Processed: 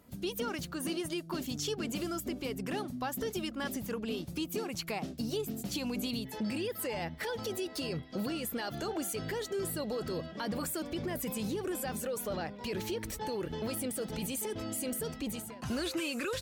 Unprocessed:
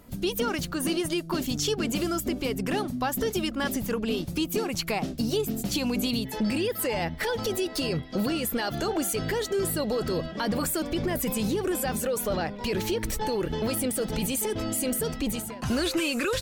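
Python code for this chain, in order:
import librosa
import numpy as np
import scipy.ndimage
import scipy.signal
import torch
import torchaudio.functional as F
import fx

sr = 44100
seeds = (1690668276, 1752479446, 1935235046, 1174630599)

y = scipy.signal.sosfilt(scipy.signal.butter(2, 60.0, 'highpass', fs=sr, output='sos'), x)
y = y * librosa.db_to_amplitude(-8.0)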